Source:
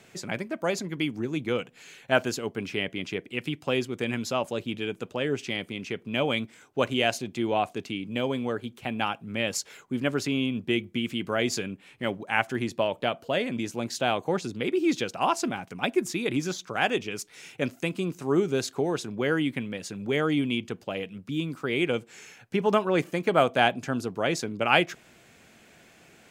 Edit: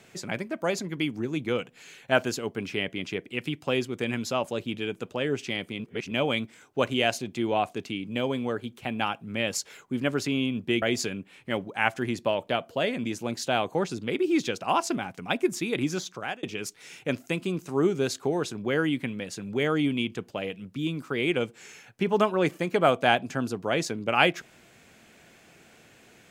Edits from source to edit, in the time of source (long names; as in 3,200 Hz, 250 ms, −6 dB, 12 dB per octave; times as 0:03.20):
0:05.80–0:06.11: reverse
0:10.82–0:11.35: remove
0:16.62–0:16.96: fade out